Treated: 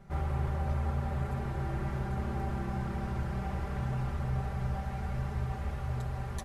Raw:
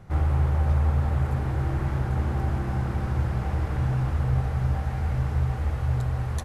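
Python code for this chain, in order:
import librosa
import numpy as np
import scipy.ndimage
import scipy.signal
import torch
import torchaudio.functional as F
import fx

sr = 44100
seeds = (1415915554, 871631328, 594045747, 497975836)

y = x + 0.73 * np.pad(x, (int(5.1 * sr / 1000.0), 0))[:len(x)]
y = F.gain(torch.from_numpy(y), -7.0).numpy()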